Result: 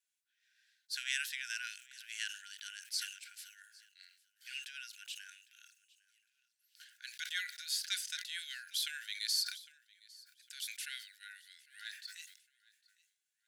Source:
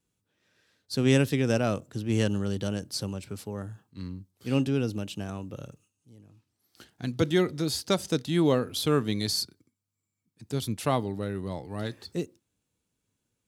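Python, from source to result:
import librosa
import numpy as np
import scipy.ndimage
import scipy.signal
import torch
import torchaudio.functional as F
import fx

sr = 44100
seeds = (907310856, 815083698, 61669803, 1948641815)

p1 = fx.brickwall_highpass(x, sr, low_hz=1400.0)
p2 = p1 + fx.echo_feedback(p1, sr, ms=806, feedback_pct=27, wet_db=-23.5, dry=0)
p3 = fx.sustainer(p2, sr, db_per_s=98.0)
y = F.gain(torch.from_numpy(p3), -4.0).numpy()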